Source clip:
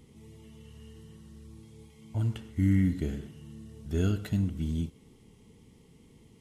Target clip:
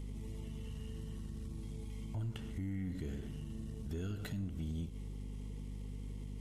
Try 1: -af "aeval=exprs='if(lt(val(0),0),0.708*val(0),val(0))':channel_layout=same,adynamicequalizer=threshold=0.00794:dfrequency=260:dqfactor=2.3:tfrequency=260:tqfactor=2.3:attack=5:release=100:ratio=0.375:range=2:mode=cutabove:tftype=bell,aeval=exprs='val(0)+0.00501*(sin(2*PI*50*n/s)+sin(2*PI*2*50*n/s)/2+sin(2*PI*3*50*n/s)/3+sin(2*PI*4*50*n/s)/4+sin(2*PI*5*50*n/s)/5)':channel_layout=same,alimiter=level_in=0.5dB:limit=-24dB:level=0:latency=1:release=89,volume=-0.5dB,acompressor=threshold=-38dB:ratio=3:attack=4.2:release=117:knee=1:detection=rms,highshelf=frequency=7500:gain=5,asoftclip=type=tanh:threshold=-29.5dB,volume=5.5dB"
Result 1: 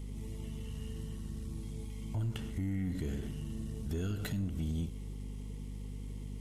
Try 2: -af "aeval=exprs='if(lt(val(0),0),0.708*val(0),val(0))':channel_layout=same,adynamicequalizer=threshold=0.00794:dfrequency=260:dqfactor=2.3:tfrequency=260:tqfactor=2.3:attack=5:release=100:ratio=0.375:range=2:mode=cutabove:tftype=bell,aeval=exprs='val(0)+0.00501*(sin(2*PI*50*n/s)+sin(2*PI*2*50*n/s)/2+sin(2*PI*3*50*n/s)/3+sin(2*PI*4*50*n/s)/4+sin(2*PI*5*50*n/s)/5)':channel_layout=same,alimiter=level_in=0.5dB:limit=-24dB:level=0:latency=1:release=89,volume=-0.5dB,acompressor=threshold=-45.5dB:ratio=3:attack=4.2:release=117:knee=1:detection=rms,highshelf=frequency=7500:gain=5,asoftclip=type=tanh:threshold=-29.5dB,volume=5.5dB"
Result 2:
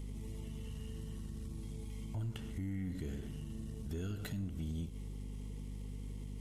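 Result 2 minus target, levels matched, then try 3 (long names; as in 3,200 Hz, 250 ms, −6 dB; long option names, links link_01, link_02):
8,000 Hz band +2.5 dB
-af "aeval=exprs='if(lt(val(0),0),0.708*val(0),val(0))':channel_layout=same,adynamicequalizer=threshold=0.00794:dfrequency=260:dqfactor=2.3:tfrequency=260:tqfactor=2.3:attack=5:release=100:ratio=0.375:range=2:mode=cutabove:tftype=bell,aeval=exprs='val(0)+0.00501*(sin(2*PI*50*n/s)+sin(2*PI*2*50*n/s)/2+sin(2*PI*3*50*n/s)/3+sin(2*PI*4*50*n/s)/4+sin(2*PI*5*50*n/s)/5)':channel_layout=same,alimiter=level_in=0.5dB:limit=-24dB:level=0:latency=1:release=89,volume=-0.5dB,acompressor=threshold=-45.5dB:ratio=3:attack=4.2:release=117:knee=1:detection=rms,asoftclip=type=tanh:threshold=-29.5dB,volume=5.5dB"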